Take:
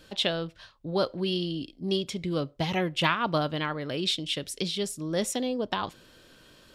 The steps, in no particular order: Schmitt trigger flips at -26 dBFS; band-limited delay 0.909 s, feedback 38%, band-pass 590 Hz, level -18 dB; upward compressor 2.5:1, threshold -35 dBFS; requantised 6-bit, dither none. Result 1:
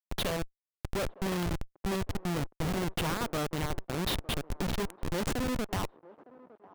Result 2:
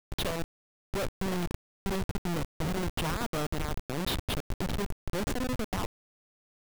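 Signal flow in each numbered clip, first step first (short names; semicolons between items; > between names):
requantised > upward compressor > Schmitt trigger > band-limited delay; band-limited delay > upward compressor > Schmitt trigger > requantised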